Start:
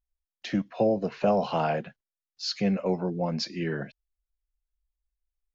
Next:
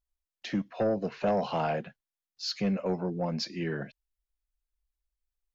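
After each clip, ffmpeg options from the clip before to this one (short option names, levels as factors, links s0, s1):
-af "aeval=exprs='0.266*sin(PI/2*1.41*val(0)/0.266)':c=same,volume=0.355"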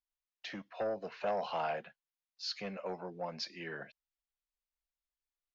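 -filter_complex "[0:a]acrossover=split=510 6200:gain=0.2 1 0.2[s0][s1][s2];[s0][s1][s2]amix=inputs=3:normalize=0,volume=0.668"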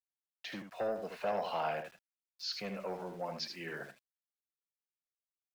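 -af "aeval=exprs='val(0)*gte(abs(val(0)),0.00168)':c=same,aecho=1:1:77:0.447"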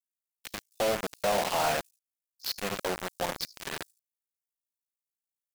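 -filter_complex "[0:a]acrossover=split=6200[s0][s1];[s0]acrusher=bits=5:mix=0:aa=0.000001[s2];[s1]aeval=exprs='val(0)*sin(2*PI*28*n/s)':c=same[s3];[s2][s3]amix=inputs=2:normalize=0,volume=2.11"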